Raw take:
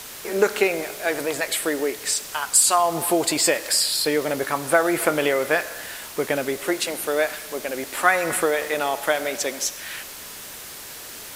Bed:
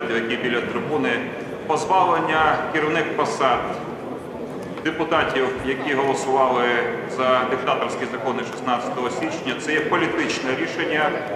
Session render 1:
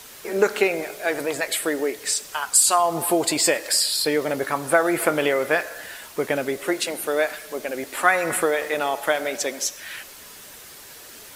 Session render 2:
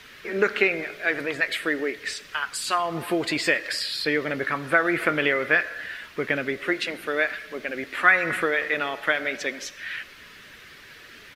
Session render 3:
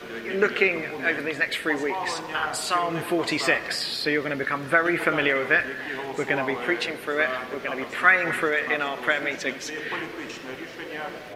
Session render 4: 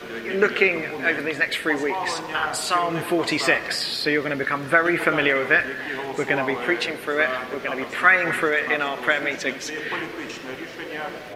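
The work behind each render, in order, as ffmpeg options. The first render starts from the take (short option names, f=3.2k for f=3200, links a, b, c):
-af "afftdn=nr=6:nf=-38"
-af "firequalizer=gain_entry='entry(160,0);entry(840,-10);entry(1200,-1);entry(1800,5);entry(7800,-18)':delay=0.05:min_phase=1"
-filter_complex "[1:a]volume=-13.5dB[a];[0:a][a]amix=inputs=2:normalize=0"
-af "volume=2.5dB,alimiter=limit=-2dB:level=0:latency=1"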